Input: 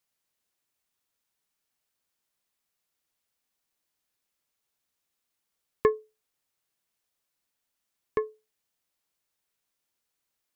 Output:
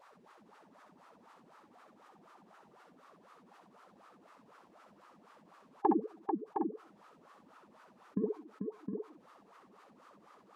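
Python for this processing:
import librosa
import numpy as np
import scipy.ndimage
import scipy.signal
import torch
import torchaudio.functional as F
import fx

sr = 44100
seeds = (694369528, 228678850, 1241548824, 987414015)

p1 = fx.wah_lfo(x, sr, hz=4.0, low_hz=200.0, high_hz=1600.0, q=10.0)
p2 = fx.vibrato(p1, sr, rate_hz=15.0, depth_cents=72.0)
p3 = fx.formant_shift(p2, sr, semitones=-4)
p4 = p3 + fx.echo_multitap(p3, sr, ms=(64, 441, 712, 761), db=(-7.0, -12.0, -13.0, -17.0), dry=0)
p5 = fx.env_flatten(p4, sr, amount_pct=50)
y = p5 * 10.0 ** (8.5 / 20.0)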